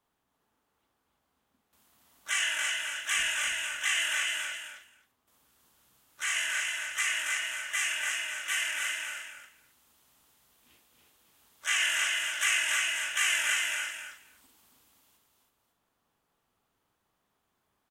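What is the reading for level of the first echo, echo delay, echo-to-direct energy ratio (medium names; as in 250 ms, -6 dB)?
-8.5 dB, 53 ms, -1.0 dB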